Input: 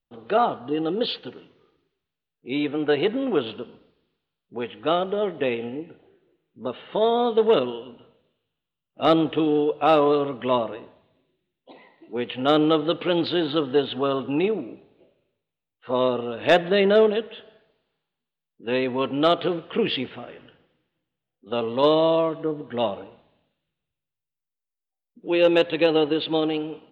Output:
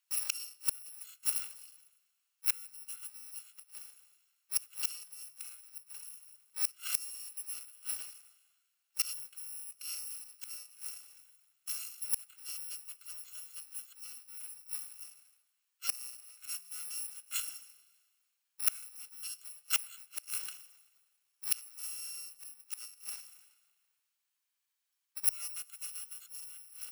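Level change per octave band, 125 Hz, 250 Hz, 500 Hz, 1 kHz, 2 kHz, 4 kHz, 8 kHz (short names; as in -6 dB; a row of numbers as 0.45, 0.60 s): under -40 dB, under -40 dB, under -40 dB, -31.5 dB, -17.0 dB, -13.5 dB, n/a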